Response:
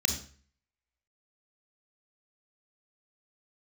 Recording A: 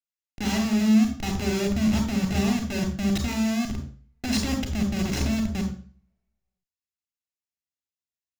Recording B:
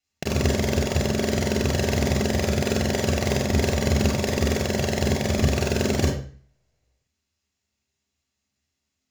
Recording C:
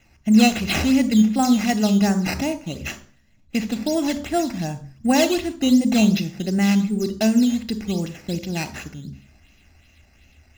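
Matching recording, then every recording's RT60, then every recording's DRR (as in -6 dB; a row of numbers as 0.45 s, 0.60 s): A; 0.45 s, 0.45 s, 0.45 s; 6.5 dB, 1.5 dB, 14.5 dB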